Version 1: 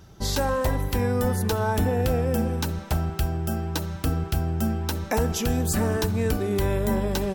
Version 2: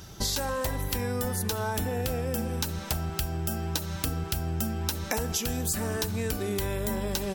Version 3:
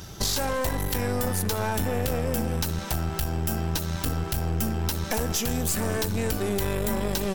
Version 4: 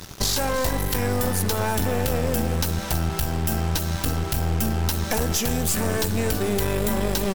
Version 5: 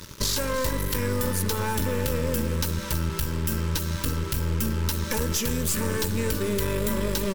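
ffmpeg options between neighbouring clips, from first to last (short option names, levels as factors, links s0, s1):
-af "highshelf=f=2200:g=10,acompressor=threshold=0.0316:ratio=5,volume=1.33"
-af "acontrast=89,aeval=exprs='(tanh(11.2*val(0)+0.6)-tanh(0.6))/11.2':c=same"
-af "aecho=1:1:330:0.211,acrusher=bits=5:mix=0:aa=0.5,volume=1.41"
-af "asuperstop=centerf=730:order=12:qfactor=3.4,volume=0.75"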